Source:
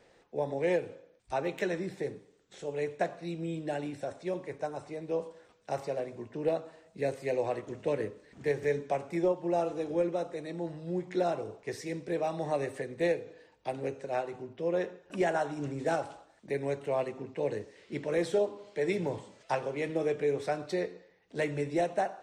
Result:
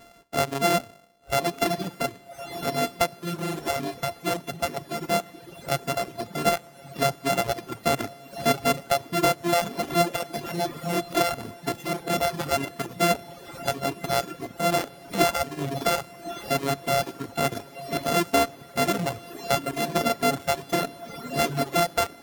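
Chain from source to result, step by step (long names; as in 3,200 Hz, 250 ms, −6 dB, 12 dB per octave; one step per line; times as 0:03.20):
samples sorted by size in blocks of 64 samples
in parallel at −1.5 dB: downward compressor, threshold −39 dBFS, peak gain reduction 15 dB
on the sum: feedback delay with all-pass diffusion 1,152 ms, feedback 63%, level −10 dB
reverb reduction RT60 1.4 s
level +6 dB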